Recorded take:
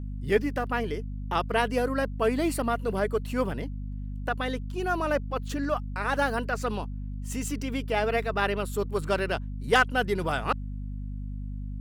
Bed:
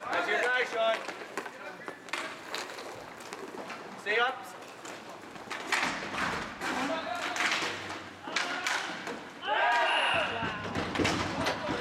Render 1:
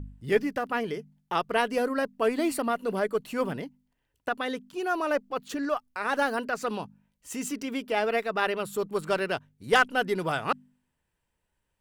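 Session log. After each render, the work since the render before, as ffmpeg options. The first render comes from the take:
-af "bandreject=f=50:t=h:w=4,bandreject=f=100:t=h:w=4,bandreject=f=150:t=h:w=4,bandreject=f=200:t=h:w=4,bandreject=f=250:t=h:w=4"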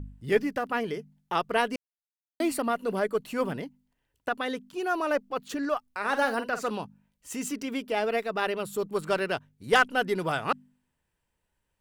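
-filter_complex "[0:a]asettb=1/sr,asplit=3[a][b][c];[a]atrim=end=5.994[d];[b]atrim=start=5.99:end=6.7,asetpts=PTS-STARTPTS,afade=t=in:d=0.004:c=qsin,afade=t=out:st=0.706:d=0.004:c=qsin,asplit=2[e][f];[f]adelay=48,volume=-10.5dB[g];[e][g]amix=inputs=2:normalize=0,atrim=end_sample=31311[h];[c]atrim=start=6.696[i];[d][h]acrossfade=d=0.004:c1=hsin:c2=qsin[j];[j][i]acrossfade=d=0.004:c1=qsin:c2=hsin,asettb=1/sr,asplit=3[k][l][m];[k]atrim=end=7.844[n];[l]atrim=start=7.84:end=8.94,asetpts=PTS-STARTPTS,afade=t=in:d=0.004:c=qsin,afade=t=out:st=1.096:d=0.004:c=qsin,equalizer=f=1.5k:t=o:w=1.8:g=-3[o];[m]atrim=start=8.936[p];[n][o]acrossfade=d=0.004:c1=hsin:c2=qsin[q];[q][p]acrossfade=d=0.004:c1=qsin:c2=hsin,asplit=3[r][s][t];[r]atrim=end=1.76,asetpts=PTS-STARTPTS,afade=t=out:st=1.756:d=0.004:c=hsin[u];[s]atrim=start=1.76:end=2.4,asetpts=PTS-STARTPTS,volume=0[v];[t]atrim=start=2.4,asetpts=PTS-STARTPTS,afade=t=in:d=0.004:c=hsin[w];[u][v][w]concat=n=3:v=0:a=1"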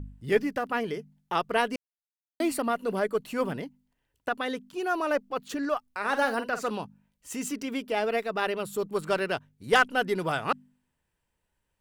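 -af anull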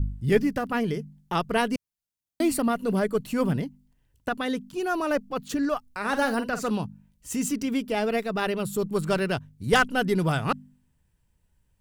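-af "bass=f=250:g=14,treble=f=4k:g=5"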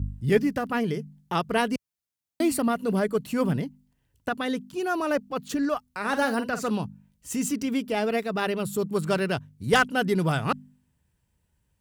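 -af "highpass=55"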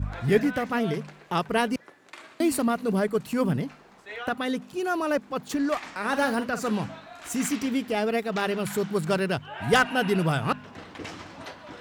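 -filter_complex "[1:a]volume=-10dB[a];[0:a][a]amix=inputs=2:normalize=0"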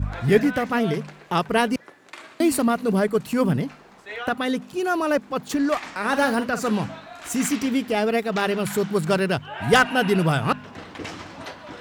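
-af "volume=4dB"

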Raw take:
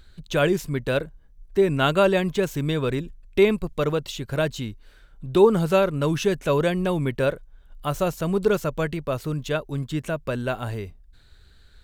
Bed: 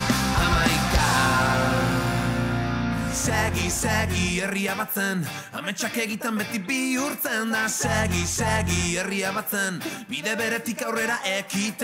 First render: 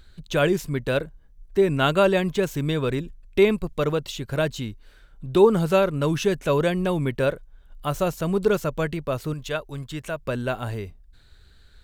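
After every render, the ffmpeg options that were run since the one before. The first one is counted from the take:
-filter_complex "[0:a]asettb=1/sr,asplit=3[a][b][c];[a]atrim=end=9.334[d];[b]atrim=start=9.33:end=10.23,asetpts=PTS-STARTPTS,afade=t=in:d=0.004:c=qsin,afade=t=out:st=0.896:d=0.004:c=qsin,equalizer=f=220:t=o:w=1.9:g=-8[e];[c]atrim=start=10.226[f];[d][e]acrossfade=d=0.004:c1=hsin:c2=qsin[g];[g][f]acrossfade=d=0.004:c1=qsin:c2=hsin"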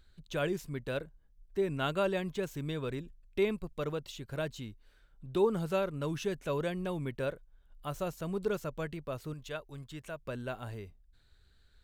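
-af "volume=-12dB"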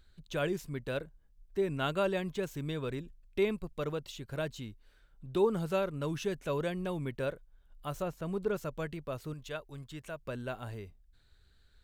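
-filter_complex "[0:a]asettb=1/sr,asplit=3[a][b][c];[a]atrim=end=8.024[d];[b]atrim=start=8.02:end=8.56,asetpts=PTS-STARTPTS,afade=t=in:d=0.004:c=qsin,afade=t=out:st=0.536:d=0.004:c=qsin,acrossover=split=2800[e][f];[f]acompressor=threshold=-59dB:ratio=4:attack=1:release=60[g];[e][g]amix=inputs=2:normalize=0[h];[c]atrim=start=8.556[i];[d][h]acrossfade=d=0.004:c1=hsin:c2=qsin[j];[j][i]acrossfade=d=0.004:c1=qsin:c2=hsin"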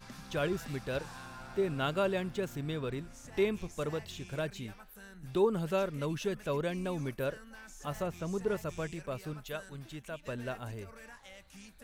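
-filter_complex "[1:a]volume=-27dB[a];[0:a][a]amix=inputs=2:normalize=0"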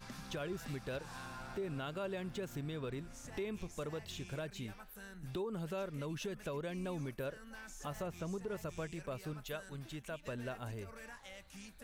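-af "alimiter=level_in=4dB:limit=-24dB:level=0:latency=1:release=175,volume=-4dB,acompressor=threshold=-43dB:ratio=1.5"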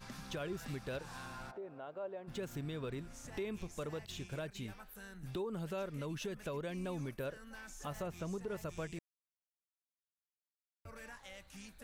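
-filter_complex "[0:a]asplit=3[a][b][c];[a]afade=t=out:st=1.5:d=0.02[d];[b]bandpass=f=650:t=q:w=1.6,afade=t=in:st=1.5:d=0.02,afade=t=out:st=2.27:d=0.02[e];[c]afade=t=in:st=2.27:d=0.02[f];[d][e][f]amix=inputs=3:normalize=0,asettb=1/sr,asplit=3[g][h][i];[g]atrim=end=4.064[j];[h]atrim=start=4.06:end=4.55,asetpts=PTS-STARTPTS,afade=t=in:d=0.004:c=qsin,afade=t=out:st=0.486:d=0.004:c=qsin,agate=range=-33dB:threshold=-48dB:ratio=3:release=100:detection=peak[k];[i]atrim=start=4.546[l];[j][k]acrossfade=d=0.004:c1=hsin:c2=qsin[m];[m][l]acrossfade=d=0.004:c1=qsin:c2=hsin,asplit=3[n][o][p];[n]atrim=end=8.99,asetpts=PTS-STARTPTS,afade=t=out:st=8.986:d=0.004:c=hsin[q];[o]atrim=start=8.99:end=10.85,asetpts=PTS-STARTPTS,volume=0[r];[p]atrim=start=10.85,asetpts=PTS-STARTPTS,afade=t=in:d=0.004:c=hsin[s];[q][r][s]concat=n=3:v=0:a=1"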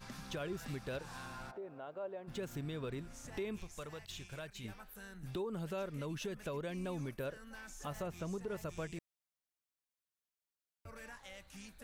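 -filter_complex "[0:a]asettb=1/sr,asplit=3[a][b][c];[a]atrim=end=3.604[d];[b]atrim=start=3.6:end=4.64,asetpts=PTS-STARTPTS,afade=t=in:d=0.004:c=qsin,afade=t=out:st=1.036:d=0.004:c=qsin,equalizer=f=280:w=0.49:g=-8.5[e];[c]atrim=start=4.636[f];[d][e]acrossfade=d=0.004:c1=hsin:c2=qsin[g];[g][f]acrossfade=d=0.004:c1=qsin:c2=hsin"

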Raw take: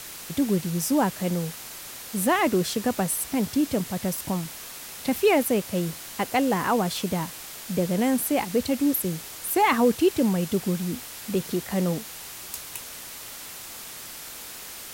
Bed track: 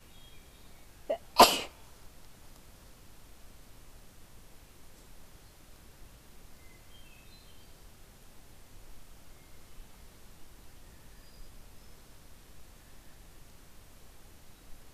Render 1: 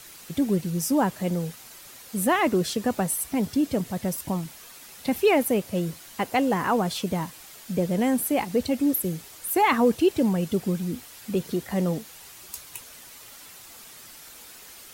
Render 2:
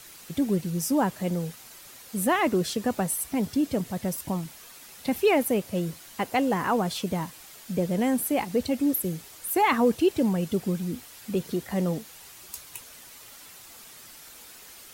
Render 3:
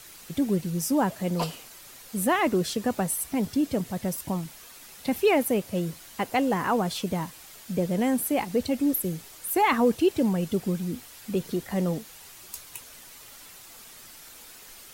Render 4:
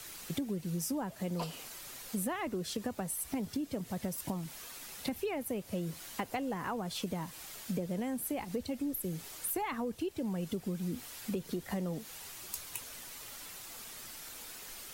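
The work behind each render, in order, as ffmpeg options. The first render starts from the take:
-af "afftdn=nr=8:nf=-40"
-af "volume=-1.5dB"
-filter_complex "[1:a]volume=-14dB[a];[0:a][a]amix=inputs=2:normalize=0"
-filter_complex "[0:a]acrossover=split=110[a][b];[a]alimiter=level_in=24dB:limit=-24dB:level=0:latency=1:release=344,volume=-24dB[c];[b]acompressor=threshold=-33dB:ratio=12[d];[c][d]amix=inputs=2:normalize=0"

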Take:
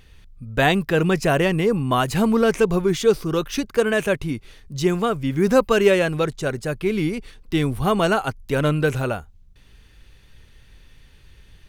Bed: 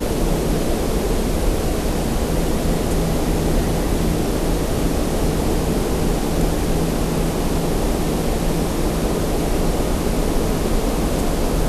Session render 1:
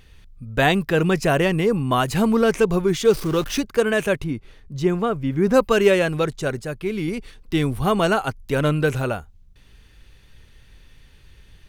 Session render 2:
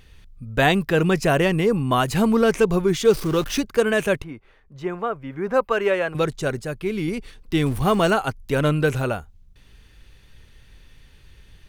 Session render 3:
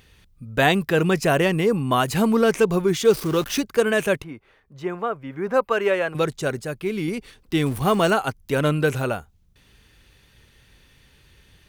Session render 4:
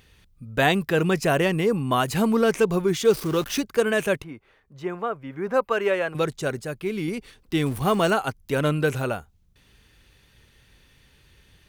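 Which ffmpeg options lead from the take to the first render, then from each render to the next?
-filter_complex "[0:a]asettb=1/sr,asplit=3[a][b][c];[a]atrim=end=3.054[d];[b]atrim=start=3.05:end=3.62,asetpts=PTS-STARTPTS,afade=t=in:d=0.004:c=qsin,afade=t=out:st=0.566:d=0.004:c=qsin,aeval=exprs='val(0)+0.5*0.0299*sgn(val(0))':c=same[e];[c]atrim=start=3.616[f];[d][e]acrossfade=d=0.004:c1=hsin:c2=qsin[g];[g][f]acrossfade=d=0.004:c1=qsin:c2=hsin,asettb=1/sr,asplit=3[h][i][j];[h]atrim=end=4.244[k];[i]atrim=start=4.24:end=5.54,asetpts=PTS-STARTPTS,afade=t=in:d=0.004:c=qsin,afade=t=out:st=1.296:d=0.004:c=qsin,highshelf=f=2.8k:g=-10.5[l];[j]atrim=start=5.536[m];[k][l]acrossfade=d=0.004:c1=hsin:c2=qsin[n];[n][m]acrossfade=d=0.004:c1=qsin:c2=hsin,asplit=3[o][p][q];[o]atrim=end=6.632[r];[p]atrim=start=6.628:end=7.082,asetpts=PTS-STARTPTS,volume=-3.5dB[s];[q]atrim=start=7.078[t];[r][s]acrossfade=d=0.004:c1=hsin:c2=hsin[u];[u][t]acrossfade=d=0.004:c1=hsin:c2=hsin"
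-filter_complex "[0:a]asettb=1/sr,asplit=3[a][b][c];[a]atrim=end=4.224[d];[b]atrim=start=4.22:end=6.15,asetpts=PTS-STARTPTS,afade=t=in:d=0.004:c=qsin,afade=t=out:st=1.926:d=0.004:c=qsin,acrossover=split=480 2400:gain=0.251 1 0.2[e][f][g];[e][f][g]amix=inputs=3:normalize=0[h];[c]atrim=start=6.146[i];[d][h]acrossfade=d=0.004:c1=hsin:c2=qsin[j];[j][i]acrossfade=d=0.004:c1=qsin:c2=hsin,asettb=1/sr,asplit=3[k][l][m];[k]atrim=end=7.664[n];[l]atrim=start=7.66:end=8.11,asetpts=PTS-STARTPTS,afade=t=in:d=0.004:c=qsin,afade=t=out:st=0.446:d=0.004:c=qsin,aeval=exprs='val(0)+0.5*0.0224*sgn(val(0))':c=same[o];[m]atrim=start=8.106[p];[n][o]acrossfade=d=0.004:c1=hsin:c2=qsin[q];[q][p]acrossfade=d=0.004:c1=qsin:c2=hsin"
-af "highpass=f=100:p=1,highshelf=f=11k:g=4.5"
-af "volume=-2dB"

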